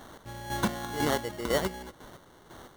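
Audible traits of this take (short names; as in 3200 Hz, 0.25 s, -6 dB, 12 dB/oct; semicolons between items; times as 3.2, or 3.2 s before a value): a quantiser's noise floor 8-bit, dither triangular; chopped level 2 Hz, depth 60%, duty 35%; aliases and images of a low sample rate 2500 Hz, jitter 0%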